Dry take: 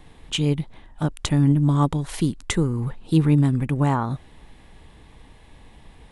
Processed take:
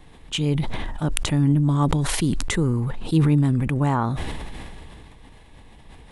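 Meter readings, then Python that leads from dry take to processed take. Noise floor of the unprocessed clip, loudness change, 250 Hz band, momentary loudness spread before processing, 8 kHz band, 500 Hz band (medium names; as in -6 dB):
-50 dBFS, 0.0 dB, -0.5 dB, 11 LU, +3.5 dB, 0.0 dB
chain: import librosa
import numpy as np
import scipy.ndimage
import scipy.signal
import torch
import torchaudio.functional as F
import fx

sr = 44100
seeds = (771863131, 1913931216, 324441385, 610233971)

y = fx.sustainer(x, sr, db_per_s=21.0)
y = y * 10.0 ** (-1.5 / 20.0)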